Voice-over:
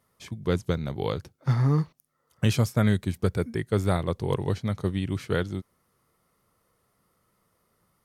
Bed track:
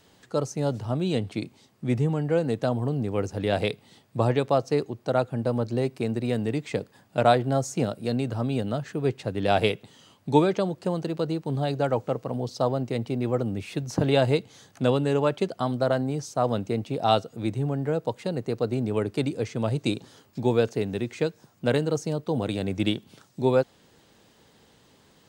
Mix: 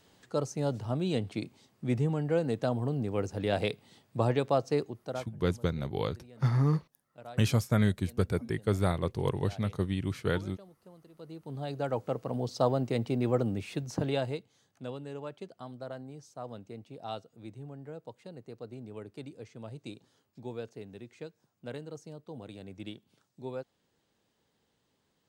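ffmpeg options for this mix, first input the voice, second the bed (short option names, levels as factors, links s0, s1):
-filter_complex "[0:a]adelay=4950,volume=0.668[s0];[1:a]volume=10.6,afade=t=out:st=4.78:d=0.56:silence=0.0749894,afade=t=in:st=11.13:d=1.48:silence=0.0562341,afade=t=out:st=13.43:d=1.05:silence=0.16788[s1];[s0][s1]amix=inputs=2:normalize=0"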